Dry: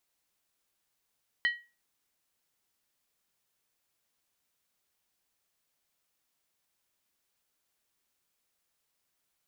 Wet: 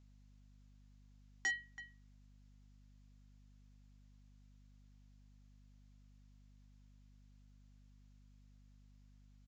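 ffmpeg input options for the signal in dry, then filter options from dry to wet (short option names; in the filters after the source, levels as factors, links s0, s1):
-f lavfi -i "aevalsrc='0.0891*pow(10,-3*t/0.3)*sin(2*PI*1910*t)+0.0299*pow(10,-3*t/0.238)*sin(2*PI*3044.5*t)+0.01*pow(10,-3*t/0.205)*sin(2*PI*4079.8*t)+0.00335*pow(10,-3*t/0.198)*sin(2*PI*4385.4*t)+0.00112*pow(10,-3*t/0.184)*sin(2*PI*5067.2*t)':d=0.63:s=44100"
-filter_complex "[0:a]aeval=exprs='val(0)+0.000794*(sin(2*PI*50*n/s)+sin(2*PI*2*50*n/s)/2+sin(2*PI*3*50*n/s)/3+sin(2*PI*4*50*n/s)/4+sin(2*PI*5*50*n/s)/5)':c=same,asplit=2[s0][s1];[s1]adelay=330,highpass=300,lowpass=3400,asoftclip=type=hard:threshold=0.0501,volume=0.112[s2];[s0][s2]amix=inputs=2:normalize=0,aresample=16000,asoftclip=type=hard:threshold=0.0237,aresample=44100"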